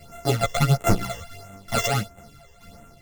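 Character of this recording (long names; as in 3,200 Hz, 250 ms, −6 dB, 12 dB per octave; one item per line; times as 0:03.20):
a buzz of ramps at a fixed pitch in blocks of 64 samples
phaser sweep stages 12, 1.5 Hz, lowest notch 230–4,700 Hz
tremolo saw down 2.3 Hz, depth 60%
a shimmering, thickened sound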